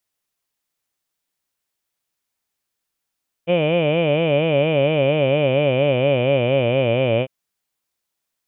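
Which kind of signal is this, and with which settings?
formant vowel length 3.80 s, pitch 165 Hz, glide -5.5 st, vibrato 4.3 Hz, vibrato depth 1.45 st, F1 560 Hz, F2 2.4 kHz, F3 3 kHz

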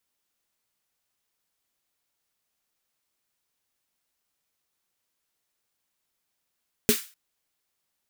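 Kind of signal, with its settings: snare drum length 0.25 s, tones 230 Hz, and 420 Hz, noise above 1.4 kHz, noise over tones -4 dB, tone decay 0.11 s, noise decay 0.35 s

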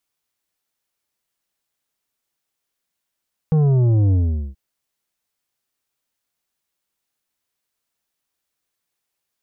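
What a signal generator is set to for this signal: sub drop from 160 Hz, over 1.03 s, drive 8.5 dB, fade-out 0.43 s, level -13.5 dB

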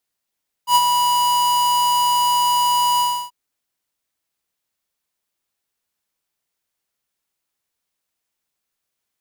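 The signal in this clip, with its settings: ADSR square 977 Hz, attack 84 ms, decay 44 ms, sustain -5.5 dB, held 2.33 s, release 305 ms -11.5 dBFS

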